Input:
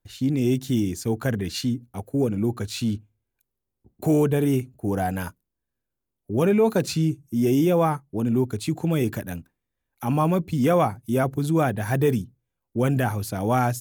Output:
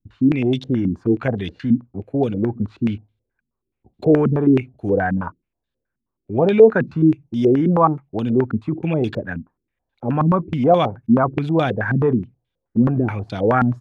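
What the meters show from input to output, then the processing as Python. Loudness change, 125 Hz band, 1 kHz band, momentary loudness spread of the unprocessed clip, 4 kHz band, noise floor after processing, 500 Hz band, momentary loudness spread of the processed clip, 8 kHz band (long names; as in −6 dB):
+5.0 dB, +3.0 dB, +5.0 dB, 9 LU, can't be measured, −81 dBFS, +6.0 dB, 9 LU, below −20 dB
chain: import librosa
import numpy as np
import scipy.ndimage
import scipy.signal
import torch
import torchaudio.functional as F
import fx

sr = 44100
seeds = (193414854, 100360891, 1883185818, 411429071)

y = fx.filter_held_lowpass(x, sr, hz=9.4, low_hz=230.0, high_hz=3600.0)
y = y * 10.0 ** (1.5 / 20.0)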